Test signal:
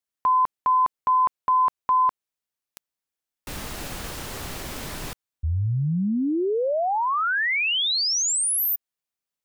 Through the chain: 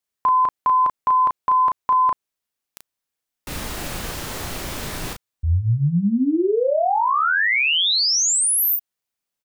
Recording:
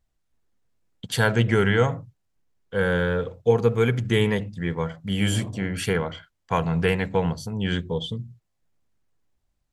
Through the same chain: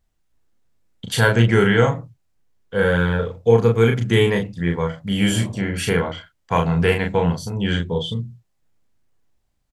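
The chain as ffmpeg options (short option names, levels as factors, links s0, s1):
-filter_complex "[0:a]asplit=2[s0][s1];[s1]adelay=35,volume=0.631[s2];[s0][s2]amix=inputs=2:normalize=0,volume=1.41"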